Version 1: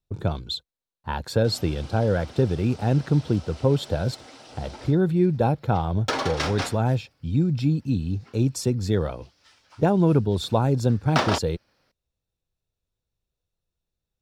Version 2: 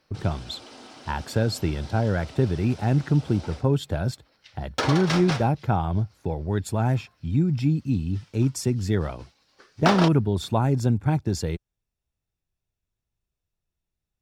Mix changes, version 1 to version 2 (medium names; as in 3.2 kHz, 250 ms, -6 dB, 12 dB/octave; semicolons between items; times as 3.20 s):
speech: add graphic EQ with 31 bands 500 Hz -8 dB, 2 kHz +5 dB, 4 kHz -7 dB; background: entry -1.30 s